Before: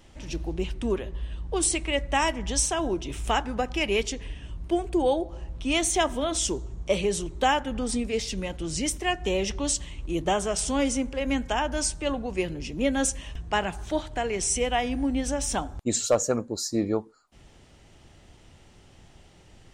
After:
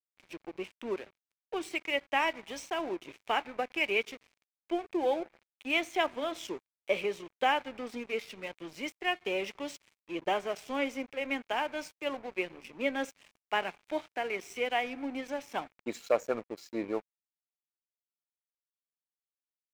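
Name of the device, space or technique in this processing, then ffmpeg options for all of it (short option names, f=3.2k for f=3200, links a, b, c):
pocket radio on a weak battery: -af "highpass=330,lowpass=3.2k,aeval=exprs='sgn(val(0))*max(abs(val(0))-0.00708,0)':c=same,equalizer=f=2.3k:t=o:w=0.36:g=8,volume=-4dB"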